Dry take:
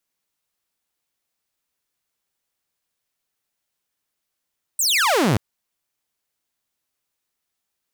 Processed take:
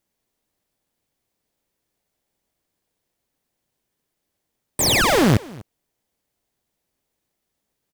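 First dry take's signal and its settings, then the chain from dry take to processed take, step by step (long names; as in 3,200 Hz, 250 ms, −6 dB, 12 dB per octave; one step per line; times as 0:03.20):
single falling chirp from 8,900 Hz, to 92 Hz, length 0.58 s saw, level −13 dB
single-tap delay 246 ms −22 dB
in parallel at −4 dB: sample-rate reduction 1,400 Hz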